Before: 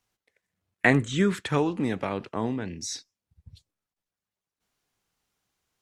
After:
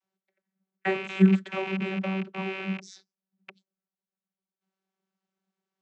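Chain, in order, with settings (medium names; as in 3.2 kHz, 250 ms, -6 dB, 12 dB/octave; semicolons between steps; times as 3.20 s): rattle on loud lows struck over -38 dBFS, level -11 dBFS; vocoder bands 32, saw 191 Hz; trim -2 dB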